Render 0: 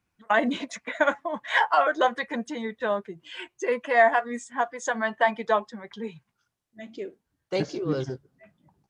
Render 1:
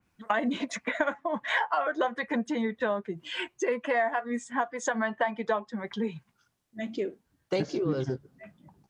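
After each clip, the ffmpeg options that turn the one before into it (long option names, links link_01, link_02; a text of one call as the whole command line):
ffmpeg -i in.wav -af "equalizer=frequency=220:width=1.5:gain=3,acompressor=threshold=-31dB:ratio=4,adynamicequalizer=threshold=0.00251:dfrequency=3200:dqfactor=0.7:tfrequency=3200:tqfactor=0.7:attack=5:release=100:ratio=0.375:range=3:mode=cutabove:tftype=highshelf,volume=5dB" out.wav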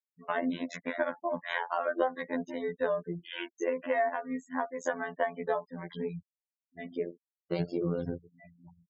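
ffmpeg -i in.wav -af "equalizer=frequency=125:width_type=o:width=1:gain=11,equalizer=frequency=500:width_type=o:width=1:gain=5,equalizer=frequency=8000:width_type=o:width=1:gain=-4,afftfilt=real='hypot(re,im)*cos(PI*b)':imag='0':win_size=2048:overlap=0.75,afftfilt=real='re*gte(hypot(re,im),0.00631)':imag='im*gte(hypot(re,im),0.00631)':win_size=1024:overlap=0.75,volume=-2.5dB" out.wav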